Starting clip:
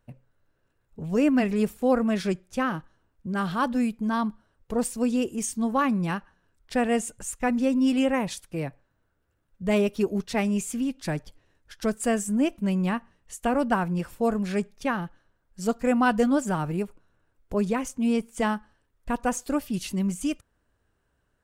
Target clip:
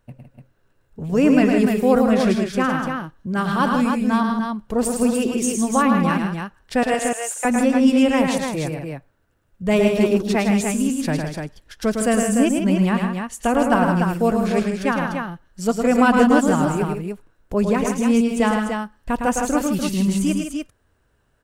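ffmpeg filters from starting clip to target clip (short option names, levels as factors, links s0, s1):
-filter_complex "[0:a]asettb=1/sr,asplit=3[s0][s1][s2];[s0]atrim=end=6.834[s3];[s1]atrim=start=6.83:end=7.45,asetpts=PTS-STARTPTS,afade=t=in:d=0.004:c=qsin,afade=t=out:st=0.616:d=0.004:c=qsin,highpass=f=540:w=0.5412,highpass=f=540:w=1.3066[s4];[s2]atrim=start=7.446[s5];[s3][s4]acrossfade=d=0.004:c1=hsin:c2=qsin[s6];[s6][s5]acrossfade=d=0.004:c1=qsin:c2=hsin,aecho=1:1:108|159|259|295:0.562|0.398|0.112|0.531,volume=1.78"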